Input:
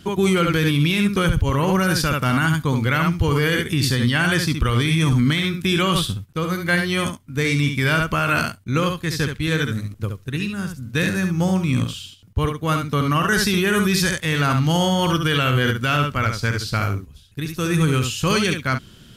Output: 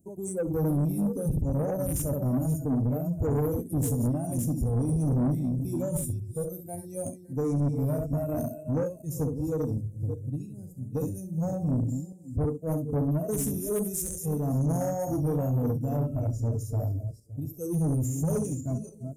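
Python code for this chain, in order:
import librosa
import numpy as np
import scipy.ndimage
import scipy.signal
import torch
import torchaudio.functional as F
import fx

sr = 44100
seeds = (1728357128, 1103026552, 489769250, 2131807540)

y = fx.reverse_delay_fb(x, sr, ms=282, feedback_pct=44, wet_db=-7.5)
y = scipy.signal.sosfilt(scipy.signal.cheby2(4, 40, [1100.0, 4700.0], 'bandstop', fs=sr, output='sos'), y)
y = fx.noise_reduce_blind(y, sr, reduce_db=16)
y = fx.low_shelf(y, sr, hz=120.0, db=-6.0)
y = 10.0 ** (-21.5 / 20.0) * np.tanh(y / 10.0 ** (-21.5 / 20.0))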